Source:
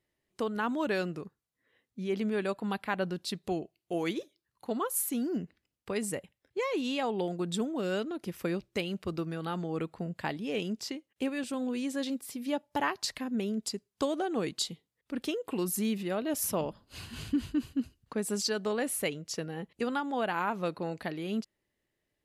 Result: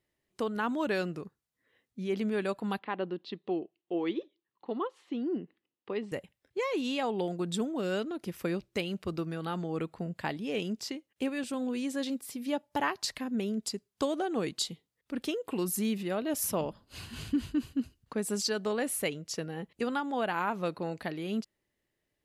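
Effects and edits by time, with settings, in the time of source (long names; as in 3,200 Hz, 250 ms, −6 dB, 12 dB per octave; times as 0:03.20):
0:02.79–0:06.12: loudspeaker in its box 250–3,300 Hz, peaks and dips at 340 Hz +4 dB, 640 Hz −6 dB, 1,500 Hz −8 dB, 2,300 Hz −6 dB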